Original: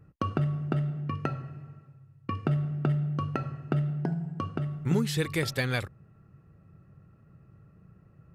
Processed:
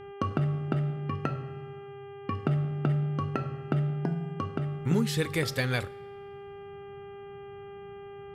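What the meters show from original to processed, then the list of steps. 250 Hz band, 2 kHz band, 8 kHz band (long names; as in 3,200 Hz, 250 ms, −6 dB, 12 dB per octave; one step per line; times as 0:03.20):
0.0 dB, 0.0 dB, 0.0 dB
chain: hum with harmonics 400 Hz, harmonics 8, −45 dBFS −8 dB per octave
coupled-rooms reverb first 0.53 s, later 2.2 s, from −18 dB, DRR 16 dB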